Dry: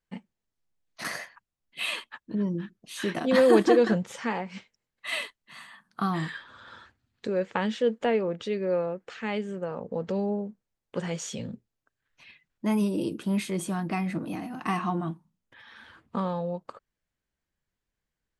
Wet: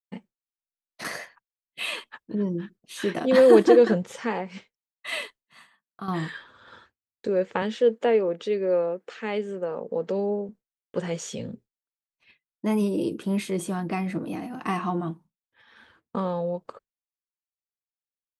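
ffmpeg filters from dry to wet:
-filter_complex "[0:a]asettb=1/sr,asplit=3[a][b][c];[a]atrim=end=7.624[d];[b]atrim=start=7.62:end=10.49,asetpts=PTS-STARTPTS,afade=t=in:d=0.004:c=qsin,afade=t=out:st=2.866:d=0.004:c=qsin,highpass=200[e];[c]atrim=start=10.486[f];[d][e]acrossfade=d=0.004:c1=hsin:c2=qsin[g];[g][f]acrossfade=d=0.004:c1=qsin:c2=hsin,asplit=2[h][i];[h]atrim=end=6.08,asetpts=PTS-STARTPTS,afade=t=out:st=5.19:d=0.89:silence=0.316228[j];[i]atrim=start=6.08,asetpts=PTS-STARTPTS,afade=t=in:d=0.004:c=hsin:silence=0.316228[k];[j][k]concat=n=2:v=0:a=1,agate=range=-33dB:threshold=-45dB:ratio=3:detection=peak,equalizer=f=440:w=1.6:g=5.5"

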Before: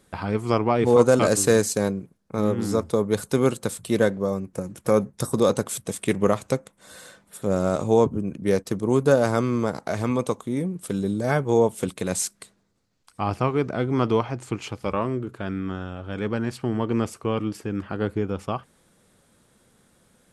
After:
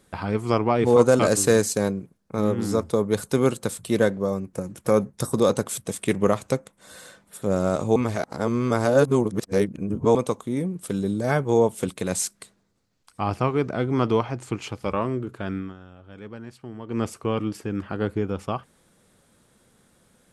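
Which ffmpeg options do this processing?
-filter_complex "[0:a]asplit=5[a][b][c][d][e];[a]atrim=end=7.962[f];[b]atrim=start=7.958:end=10.152,asetpts=PTS-STARTPTS,areverse[g];[c]atrim=start=10.148:end=15.74,asetpts=PTS-STARTPTS,afade=t=out:st=5.412:d=0.18:silence=0.237137[h];[d]atrim=start=15.74:end=16.86,asetpts=PTS-STARTPTS,volume=-12.5dB[i];[e]atrim=start=16.86,asetpts=PTS-STARTPTS,afade=t=in:d=0.18:silence=0.237137[j];[f][g]acrossfade=d=0.004:c1=hsin:c2=hsin[k];[h][i][j]concat=n=3:v=0:a=1[l];[k][l]acrossfade=d=0.004:c1=hsin:c2=hsin"

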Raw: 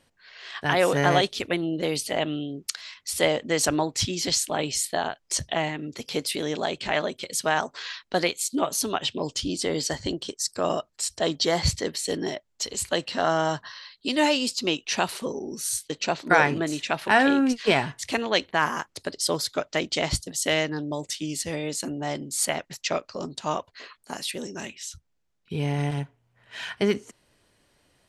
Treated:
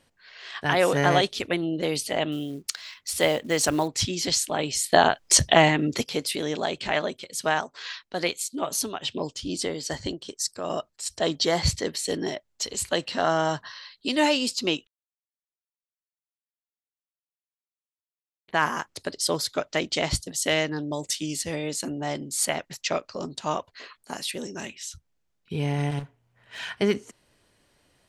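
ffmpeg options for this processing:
-filter_complex "[0:a]asettb=1/sr,asplit=3[a][b][c];[a]atrim=end=2.324[d];[b]atrim=start=2.32:end=3.88,asetpts=PTS-STARTPTS,afade=t=in:d=0.004:c=qsin,afade=t=out:st=1.556:d=0.004:c=qsin,acrusher=bits=6:mode=log:mix=0:aa=0.000001[e];[c]atrim=start=3.876[f];[d][e]acrossfade=d=0.004:c1=hsin:c2=qsin[g];[g][f]acrossfade=d=0.004:c1=qsin:c2=hsin,asplit=3[h][i][j];[h]afade=t=out:st=6.98:d=0.02[k];[i]tremolo=f=2.4:d=0.55,afade=t=in:st=6.98:d=0.02,afade=t=out:st=11.05:d=0.02[l];[j]afade=t=in:st=11.05:d=0.02[m];[k][l][m]amix=inputs=3:normalize=0,asettb=1/sr,asplit=3[n][o][p];[n]atrim=end=20.914[q];[o]atrim=start=20.91:end=21.36,asetpts=PTS-STARTPTS,afade=t=in:d=0.004:c=qsin,afade=t=out:st=0.446:d=0.004:c=qsin,highshelf=f=5.3k:g=7[r];[p]atrim=start=21.356[s];[q][r]acrossfade=d=0.004:c1=hsin:c2=qsin[t];[t][s]acrossfade=d=0.004:c1=qsin:c2=hsin,asettb=1/sr,asplit=3[u][v][w];[u]atrim=end=25.994[x];[v]atrim=start=25.99:end=26.59,asetpts=PTS-STARTPTS,afade=t=in:d=0.004:c=qsin,afade=t=out:st=0.596:d=0.004:c=qsin,volume=34dB,asoftclip=hard,volume=-34dB[y];[w]atrim=start=26.586[z];[x][y]acrossfade=d=0.004:c1=hsin:c2=qsin[aa];[aa][z]acrossfade=d=0.004:c1=qsin:c2=hsin,asplit=5[ab][ac][ad][ae][af];[ab]atrim=end=4.922[ag];[ac]atrim=start=4.918:end=6.042,asetpts=PTS-STARTPTS,volume=9.5dB[ah];[ad]atrim=start=6.038:end=14.87,asetpts=PTS-STARTPTS,afade=t=out:st=8.828:d=0.004:c=hsin[ai];[ae]atrim=start=14.87:end=18.48,asetpts=PTS-STARTPTS,volume=0[aj];[af]atrim=start=18.48,asetpts=PTS-STARTPTS,afade=t=in:d=0.004:c=hsin[ak];[ag][ah]acrossfade=d=0.004:c1=hsin:c2=hsin[al];[ai][aj][ak]concat=n=3:v=0:a=1[am];[al][am]acrossfade=d=0.004:c1=hsin:c2=hsin"

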